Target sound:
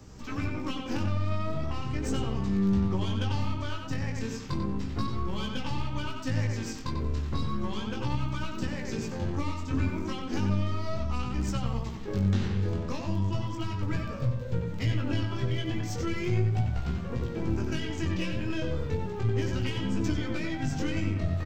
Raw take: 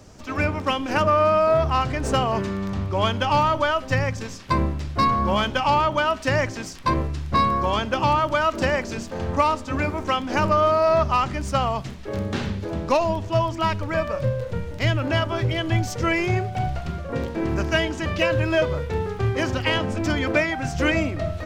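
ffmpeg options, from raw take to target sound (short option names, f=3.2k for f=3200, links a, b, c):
-filter_complex "[0:a]superequalizer=8b=0.447:16b=0.282,aeval=exprs='0.447*(cos(1*acos(clip(val(0)/0.447,-1,1)))-cos(1*PI/2))+0.0501*(cos(4*acos(clip(val(0)/0.447,-1,1)))-cos(4*PI/2))+0.0112*(cos(5*acos(clip(val(0)/0.447,-1,1)))-cos(5*PI/2))+0.0178*(cos(7*acos(clip(val(0)/0.447,-1,1)))-cos(7*PI/2))+0.00398*(cos(8*acos(clip(val(0)/0.447,-1,1)))-cos(8*PI/2))':c=same,lowshelf=f=260:g=4.5,alimiter=limit=-14.5dB:level=0:latency=1:release=293,asplit=2[a][b];[b]adelay=92,lowpass=f=3.3k:p=1,volume=-4dB,asplit=2[c][d];[d]adelay=92,lowpass=f=3.3k:p=1,volume=0.32,asplit=2[e][f];[f]adelay=92,lowpass=f=3.3k:p=1,volume=0.32,asplit=2[g][h];[h]adelay=92,lowpass=f=3.3k:p=1,volume=0.32[i];[c][e][g][i]amix=inputs=4:normalize=0[j];[a][j]amix=inputs=2:normalize=0,acrossover=split=410|3000[k][l][m];[l]acompressor=threshold=-37dB:ratio=10[n];[k][n][m]amix=inputs=3:normalize=0,flanger=delay=16:depth=6.4:speed=0.35"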